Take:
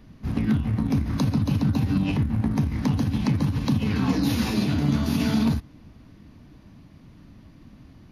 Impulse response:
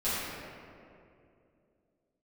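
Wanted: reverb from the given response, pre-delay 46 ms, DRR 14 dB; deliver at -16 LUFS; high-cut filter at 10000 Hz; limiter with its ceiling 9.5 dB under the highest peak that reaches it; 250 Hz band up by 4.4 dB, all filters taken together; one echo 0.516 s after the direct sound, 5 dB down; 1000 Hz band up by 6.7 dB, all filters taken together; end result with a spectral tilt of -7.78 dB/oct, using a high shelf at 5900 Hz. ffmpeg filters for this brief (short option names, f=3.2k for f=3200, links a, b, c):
-filter_complex "[0:a]lowpass=10k,equalizer=f=250:t=o:g=5,equalizer=f=1k:t=o:g=8,highshelf=f=5.9k:g=-8,alimiter=limit=-16dB:level=0:latency=1,aecho=1:1:516:0.562,asplit=2[a][b];[1:a]atrim=start_sample=2205,adelay=46[c];[b][c]afir=irnorm=-1:irlink=0,volume=-24dB[d];[a][d]amix=inputs=2:normalize=0,volume=7dB"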